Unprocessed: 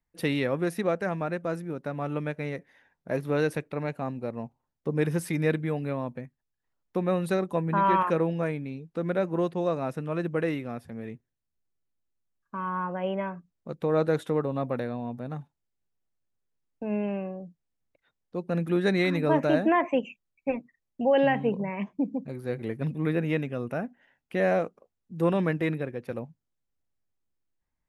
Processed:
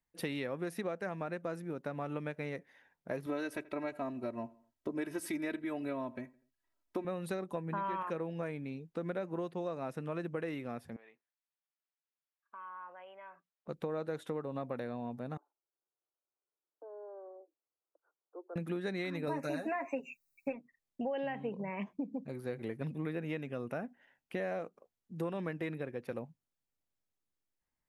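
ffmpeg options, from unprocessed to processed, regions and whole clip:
ffmpeg -i in.wav -filter_complex "[0:a]asettb=1/sr,asplit=3[link_01][link_02][link_03];[link_01]atrim=end=3.264[link_04];[link_02]atrim=start=3.26:end=7.05,asetpts=PTS-STARTPTS,afade=type=in:duration=0.004:curve=qsin,afade=type=out:start_time=3.786:duration=0.004:curve=qsin,aecho=1:1:3.1:0.87,atrim=end_sample=167139,asplit=2[link_05][link_06];[link_06]adelay=82,lowpass=frequency=2400:poles=1,volume=-22.5dB,asplit=2[link_07][link_08];[link_08]adelay=82,lowpass=frequency=2400:poles=1,volume=0.44,asplit=2[link_09][link_10];[link_10]adelay=82,lowpass=frequency=2400:poles=1,volume=0.44[link_11];[link_05][link_07][link_09][link_11]amix=inputs=4:normalize=0,atrim=end_sample=167139[link_12];[link_03]atrim=start=7.046[link_13];[link_04][link_12]acrossfade=duration=0.004:curve1=hsin:curve2=qsin[link_14];[link_14][link_13]acrossfade=duration=0.004:curve1=qsin:curve2=hsin,asettb=1/sr,asplit=3[link_15][link_16][link_17];[link_15]atrim=end=10.964[link_18];[link_16]atrim=start=10.96:end=13.68,asetpts=PTS-STARTPTS,afade=type=in:duration=0.004:curve=qsin,afade=type=out:start_time=2.716:duration=0.004:curve=qsin,acompressor=threshold=-40dB:ratio=4:attack=3.2:release=140:knee=1:detection=peak,highpass=780,lowpass=3600[link_19];[link_17]atrim=start=13.676[link_20];[link_18][link_19]acrossfade=duration=0.004:curve1=hsin:curve2=qsin[link_21];[link_21][link_20]acrossfade=duration=0.004:curve1=qsin:curve2=hsin,asettb=1/sr,asplit=3[link_22][link_23][link_24];[link_22]atrim=end=15.374[link_25];[link_23]atrim=start=15.37:end=18.56,asetpts=PTS-STARTPTS,afade=type=in:duration=0.004:curve=qsin,afade=type=out:start_time=3.186:duration=0.004:curve=qsin,acompressor=threshold=-56dB:ratio=1.5:attack=3.2:release=140:knee=1:detection=peak,asuperpass=centerf=680:order=20:qfactor=0.58[link_26];[link_24]atrim=start=18.556[link_27];[link_25][link_26]acrossfade=duration=0.004:curve1=hsin:curve2=qsin[link_28];[link_28][link_27]acrossfade=duration=0.004:curve1=qsin:curve2=hsin,asettb=1/sr,asplit=3[link_29][link_30][link_31];[link_29]atrim=end=19.274[link_32];[link_30]atrim=start=19.27:end=20.53,asetpts=PTS-STARTPTS,afade=type=in:duration=0.004:curve=qsin,afade=type=out:start_time=1.256:duration=0.004:curve=qsin,asuperstop=centerf=3200:order=8:qfactor=3.5,aemphasis=mode=production:type=75kf,aecho=1:1:7.3:0.79,atrim=end_sample=55566[link_33];[link_31]atrim=start=20.526[link_34];[link_32][link_33]acrossfade=duration=0.004:curve1=hsin:curve2=qsin[link_35];[link_35][link_34]acrossfade=duration=0.004:curve1=qsin:curve2=hsin,lowshelf=frequency=140:gain=-7,acompressor=threshold=-31dB:ratio=6,volume=-3dB" out.wav

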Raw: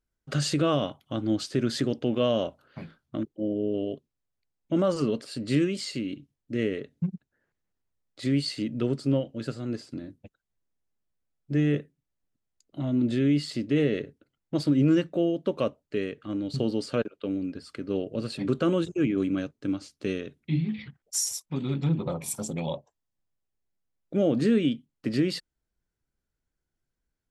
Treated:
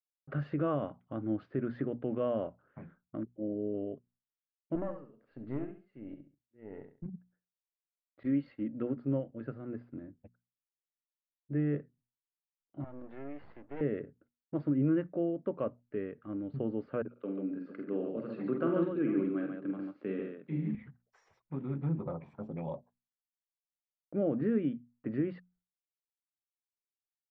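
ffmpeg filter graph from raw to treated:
ffmpeg -i in.wav -filter_complex "[0:a]asettb=1/sr,asplit=3[link_01][link_02][link_03];[link_01]atrim=end=4.754[link_04];[link_02]atrim=start=4.75:end=7.06,asetpts=PTS-STARTPTS,afade=type=in:duration=0.004:curve=qsin,afade=type=out:start_time=2.306:duration=0.004:curve=qsin,tremolo=f=1.4:d=0.94,aeval=exprs='(tanh(12.6*val(0)+0.75)-tanh(0.75))/12.6':channel_layout=same,aecho=1:1:68|136|204:0.376|0.105|0.0295,atrim=end_sample=101871[link_05];[link_03]atrim=start=7.056[link_06];[link_04][link_05]acrossfade=duration=0.004:curve1=hsin:curve2=qsin[link_07];[link_07][link_06]acrossfade=duration=0.004:curve1=qsin:curve2=hsin,asettb=1/sr,asplit=3[link_08][link_09][link_10];[link_08]atrim=end=8.234[link_11];[link_09]atrim=start=8.23:end=8.97,asetpts=PTS-STARTPTS,afade=type=in:duration=0.004:curve=qsin,afade=type=out:start_time=0.736:duration=0.004:curve=qsin,agate=range=-33dB:threshold=-34dB:ratio=3:release=100:detection=peak,aecho=1:1:3.7:0.44,atrim=end_sample=32634[link_12];[link_10]atrim=start=8.966[link_13];[link_11][link_12]acrossfade=duration=0.004:curve1=hsin:curve2=qsin[link_14];[link_14][link_13]acrossfade=duration=0.004:curve1=qsin:curve2=hsin,asettb=1/sr,asplit=3[link_15][link_16][link_17];[link_15]atrim=end=12.844[link_18];[link_16]atrim=start=12.84:end=13.81,asetpts=PTS-STARTPTS,afade=type=in:duration=0.004:curve=qsin,afade=type=out:start_time=0.966:duration=0.004:curve=qsin,highpass=490,aeval=exprs='max(val(0),0)':channel_layout=same[link_19];[link_17]atrim=start=13.806[link_20];[link_18][link_19]acrossfade=duration=0.004:curve1=hsin:curve2=qsin[link_21];[link_21][link_20]acrossfade=duration=0.004:curve1=qsin:curve2=hsin,asettb=1/sr,asplit=3[link_22][link_23][link_24];[link_22]atrim=end=17.114[link_25];[link_23]atrim=start=17.11:end=20.75,asetpts=PTS-STARTPTS,afade=type=in:duration=0.004:curve=qsin,afade=type=out:start_time=3.636:duration=0.004:curve=qsin,highpass=frequency=160:width=0.5412,highpass=frequency=160:width=1.3066,highshelf=frequency=4800:gain=9.5,aecho=1:1:47|80|140|451:0.501|0.251|0.596|0.178,atrim=end_sample=160524[link_26];[link_24]atrim=start=20.746[link_27];[link_25][link_26]acrossfade=duration=0.004:curve1=hsin:curve2=qsin[link_28];[link_28][link_27]acrossfade=duration=0.004:curve1=qsin:curve2=hsin,agate=range=-33dB:threshold=-56dB:ratio=3:detection=peak,lowpass=frequency=1800:width=0.5412,lowpass=frequency=1800:width=1.3066,bandreject=frequency=60:width_type=h:width=6,bandreject=frequency=120:width_type=h:width=6,bandreject=frequency=180:width_type=h:width=6,bandreject=frequency=240:width_type=h:width=6,volume=-7dB" out.wav

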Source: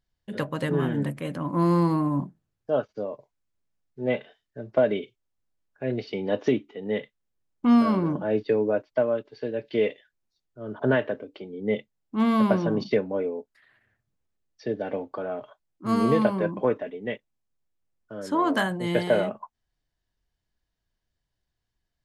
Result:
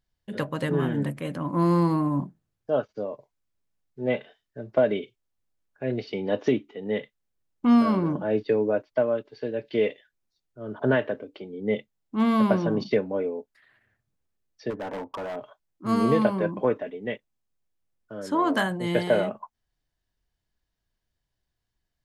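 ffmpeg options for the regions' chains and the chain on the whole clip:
ffmpeg -i in.wav -filter_complex "[0:a]asettb=1/sr,asplit=3[link_01][link_02][link_03];[link_01]atrim=end=14.704[link_04];[link_02]atrim=start=14.7:end=15.36,asetpts=PTS-STARTPTS,afade=type=in:duration=0.004:curve=qsin,afade=type=out:start_time=0.656:duration=0.004:curve=qsin,lowpass=frequency=2000:width=0.5412,lowpass=frequency=2000:width=1.3066,equalizer=frequency=970:width_type=o:width=0.31:gain=14,asoftclip=type=hard:threshold=-30dB[link_05];[link_03]atrim=start=15.356[link_06];[link_04][link_05]acrossfade=duration=0.004:curve1=hsin:curve2=qsin[link_07];[link_07][link_06]acrossfade=duration=0.004:curve1=qsin:curve2=hsin" out.wav

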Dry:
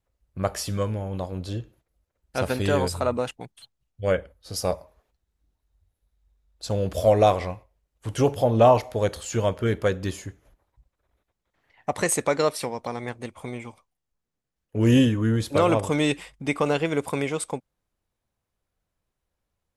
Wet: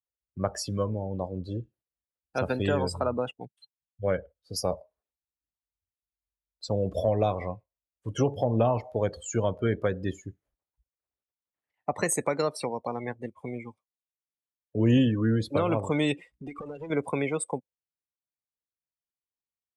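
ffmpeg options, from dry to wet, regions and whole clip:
ffmpeg -i in.wav -filter_complex "[0:a]asettb=1/sr,asplit=3[link_01][link_02][link_03];[link_01]atrim=end=16.304[link_04];[link_02]atrim=start=16.3:end=16.9,asetpts=PTS-STARTPTS,afade=type=in:duration=0.004:curve=qsin,afade=type=out:start_time=0.596:duration=0.004:curve=qsin,acompressor=threshold=-28dB:ratio=8:attack=3.2:release=140:knee=1:detection=peak,aeval=exprs='clip(val(0),-1,0.0119)':channel_layout=same,aeval=exprs='val(0)+0.00126*(sin(2*PI*60*n/s)+sin(2*PI*2*60*n/s)/2+sin(2*PI*3*60*n/s)/3+sin(2*PI*4*60*n/s)/4+sin(2*PI*5*60*n/s)/5)':channel_layout=same[link_05];[link_03]atrim=start=16.896[link_06];[link_04][link_05]acrossfade=duration=0.004:curve1=hsin:curve2=qsin[link_07];[link_07][link_06]acrossfade=duration=0.004:curve1=qsin:curve2=hsin,afftdn=noise_reduction=24:noise_floor=-34,highpass=frequency=120:poles=1,acrossover=split=220[link_08][link_09];[link_09]acompressor=threshold=-24dB:ratio=4[link_10];[link_08][link_10]amix=inputs=2:normalize=0" out.wav

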